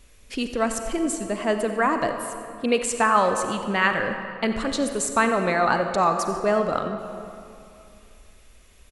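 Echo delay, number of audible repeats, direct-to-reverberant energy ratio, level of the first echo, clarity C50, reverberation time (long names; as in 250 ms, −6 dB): 90 ms, 1, 6.0 dB, −16.5 dB, 6.5 dB, 2.7 s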